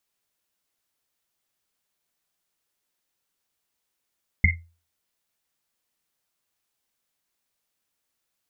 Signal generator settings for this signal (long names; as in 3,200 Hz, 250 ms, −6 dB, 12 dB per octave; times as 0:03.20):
drum after Risset, pitch 84 Hz, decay 0.36 s, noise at 2,100 Hz, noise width 150 Hz, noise 50%